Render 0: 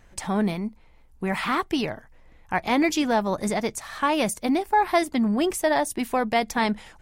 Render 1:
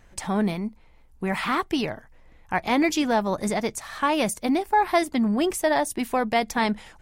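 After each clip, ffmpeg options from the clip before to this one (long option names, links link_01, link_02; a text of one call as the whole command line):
ffmpeg -i in.wav -af anull out.wav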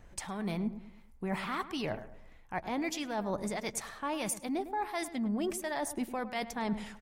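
ffmpeg -i in.wav -filter_complex "[0:a]areverse,acompressor=threshold=-30dB:ratio=6,areverse,acrossover=split=1000[link_01][link_02];[link_01]aeval=exprs='val(0)*(1-0.5/2+0.5/2*cos(2*PI*1.5*n/s))':channel_layout=same[link_03];[link_02]aeval=exprs='val(0)*(1-0.5/2-0.5/2*cos(2*PI*1.5*n/s))':channel_layout=same[link_04];[link_03][link_04]amix=inputs=2:normalize=0,asplit=2[link_05][link_06];[link_06]adelay=105,lowpass=frequency=1600:poles=1,volume=-12dB,asplit=2[link_07][link_08];[link_08]adelay=105,lowpass=frequency=1600:poles=1,volume=0.42,asplit=2[link_09][link_10];[link_10]adelay=105,lowpass=frequency=1600:poles=1,volume=0.42,asplit=2[link_11][link_12];[link_12]adelay=105,lowpass=frequency=1600:poles=1,volume=0.42[link_13];[link_05][link_07][link_09][link_11][link_13]amix=inputs=5:normalize=0" out.wav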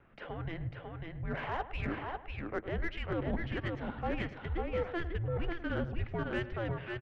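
ffmpeg -i in.wav -af "highpass=frequency=230:width_type=q:width=0.5412,highpass=frequency=230:width_type=q:width=1.307,lowpass=frequency=3300:width_type=q:width=0.5176,lowpass=frequency=3300:width_type=q:width=0.7071,lowpass=frequency=3300:width_type=q:width=1.932,afreqshift=-340,aecho=1:1:546:0.631,aeval=exprs='0.0794*(cos(1*acos(clip(val(0)/0.0794,-1,1)))-cos(1*PI/2))+0.002*(cos(8*acos(clip(val(0)/0.0794,-1,1)))-cos(8*PI/2))':channel_layout=same" out.wav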